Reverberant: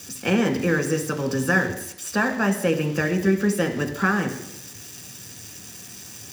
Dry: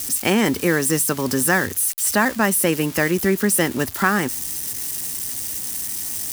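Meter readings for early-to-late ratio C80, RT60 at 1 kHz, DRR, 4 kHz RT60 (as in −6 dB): 12.0 dB, 0.85 s, 3.5 dB, 0.85 s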